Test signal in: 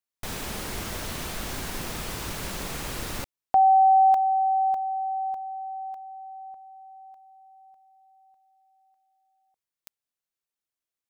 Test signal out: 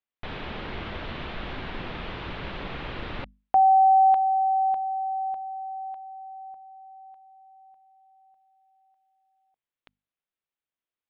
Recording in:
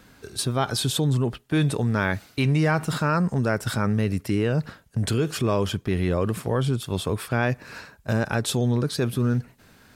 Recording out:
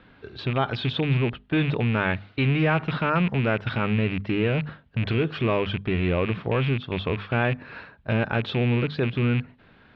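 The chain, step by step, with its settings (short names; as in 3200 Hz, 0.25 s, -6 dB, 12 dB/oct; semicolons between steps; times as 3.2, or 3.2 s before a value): rattling part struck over -24 dBFS, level -21 dBFS; steep low-pass 3600 Hz 36 dB/oct; notches 50/100/150/200/250 Hz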